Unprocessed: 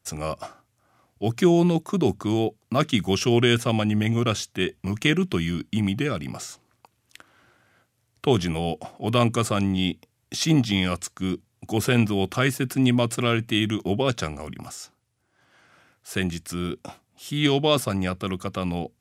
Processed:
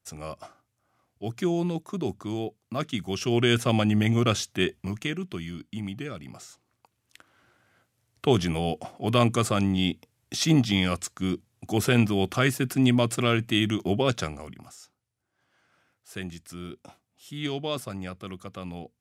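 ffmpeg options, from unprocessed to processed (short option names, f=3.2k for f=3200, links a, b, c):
-af "volume=9dB,afade=t=in:st=3.12:d=0.63:silence=0.398107,afade=t=out:st=4.64:d=0.45:silence=0.316228,afade=t=in:st=6.44:d=1.95:silence=0.354813,afade=t=out:st=14.14:d=0.5:silence=0.354813"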